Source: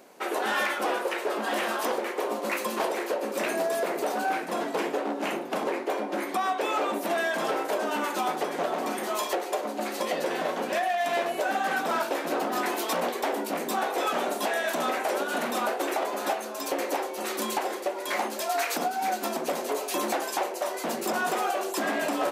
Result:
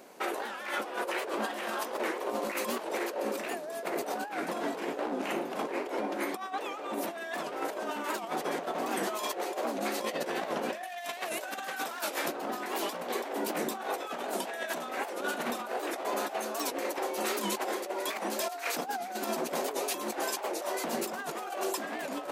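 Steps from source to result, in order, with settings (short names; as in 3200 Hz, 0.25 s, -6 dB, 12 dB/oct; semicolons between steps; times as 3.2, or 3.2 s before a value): negative-ratio compressor -31 dBFS, ratio -0.5; 10.83–12.28 tilt +2.5 dB/oct; 13.04–13.47 HPF 140 Hz; record warp 78 rpm, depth 160 cents; gain -2.5 dB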